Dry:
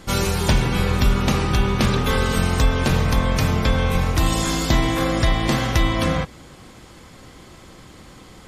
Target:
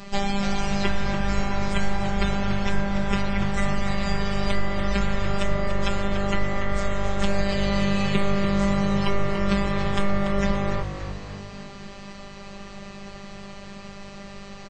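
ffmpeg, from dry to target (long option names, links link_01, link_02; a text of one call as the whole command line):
ffmpeg -i in.wav -filter_complex "[0:a]acrossover=split=360|860|6100[link_01][link_02][link_03][link_04];[link_01]acompressor=threshold=-24dB:ratio=4[link_05];[link_02]acompressor=threshold=-39dB:ratio=4[link_06];[link_03]acompressor=threshold=-34dB:ratio=4[link_07];[link_04]acompressor=threshold=-48dB:ratio=4[link_08];[link_05][link_06][link_07][link_08]amix=inputs=4:normalize=0,afftfilt=real='hypot(re,im)*cos(PI*b)':imag='0':win_size=512:overlap=0.75,asplit=6[link_09][link_10][link_11][link_12][link_13][link_14];[link_10]adelay=166,afreqshift=-88,volume=-9.5dB[link_15];[link_11]adelay=332,afreqshift=-176,volume=-15.9dB[link_16];[link_12]adelay=498,afreqshift=-264,volume=-22.3dB[link_17];[link_13]adelay=664,afreqshift=-352,volume=-28.6dB[link_18];[link_14]adelay=830,afreqshift=-440,volume=-35dB[link_19];[link_09][link_15][link_16][link_17][link_18][link_19]amix=inputs=6:normalize=0,asetrate=25442,aresample=44100,volume=7.5dB" out.wav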